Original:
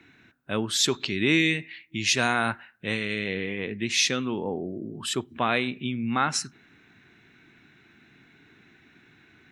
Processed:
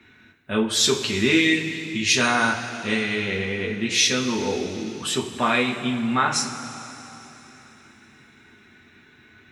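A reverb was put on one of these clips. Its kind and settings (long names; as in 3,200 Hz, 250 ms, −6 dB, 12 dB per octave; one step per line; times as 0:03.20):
coupled-rooms reverb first 0.24 s, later 3.6 s, from −18 dB, DRR −2.5 dB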